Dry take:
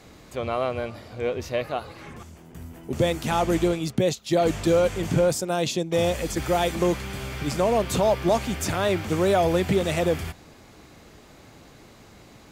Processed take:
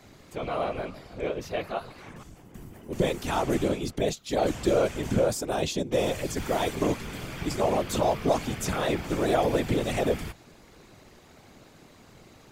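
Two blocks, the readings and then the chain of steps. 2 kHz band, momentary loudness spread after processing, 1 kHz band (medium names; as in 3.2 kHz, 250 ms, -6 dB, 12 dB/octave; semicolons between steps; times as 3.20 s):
-3.5 dB, 14 LU, -3.0 dB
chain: whisper effect; trim -3.5 dB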